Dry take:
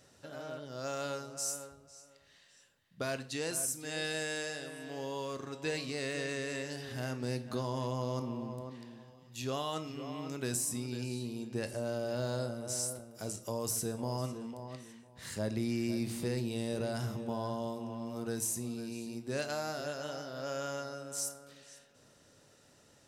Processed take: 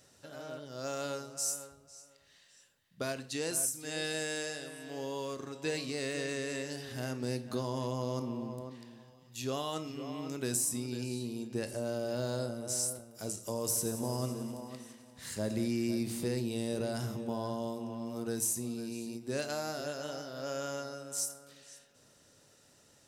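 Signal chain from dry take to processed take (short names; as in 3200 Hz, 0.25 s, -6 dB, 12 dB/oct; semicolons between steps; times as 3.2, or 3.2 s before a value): high shelf 4400 Hz +6 dB; 13.29–15.68 multi-head echo 88 ms, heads first and second, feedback 66%, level -16 dB; dynamic EQ 320 Hz, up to +4 dB, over -44 dBFS, Q 0.7; ending taper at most 170 dB/s; gain -2 dB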